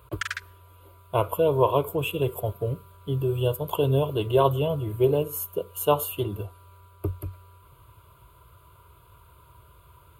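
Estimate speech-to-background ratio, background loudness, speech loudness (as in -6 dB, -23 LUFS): 8.0 dB, -34.0 LUFS, -26.0 LUFS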